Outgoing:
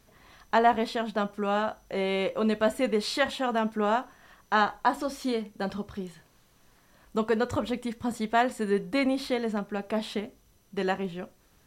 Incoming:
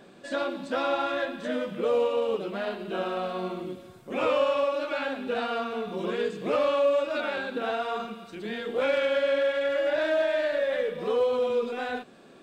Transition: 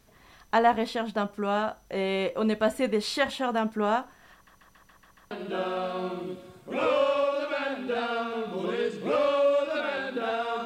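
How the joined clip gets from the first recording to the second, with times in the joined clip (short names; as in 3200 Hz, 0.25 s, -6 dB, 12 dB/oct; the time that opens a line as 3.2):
outgoing
4.33 stutter in place 0.14 s, 7 plays
5.31 switch to incoming from 2.71 s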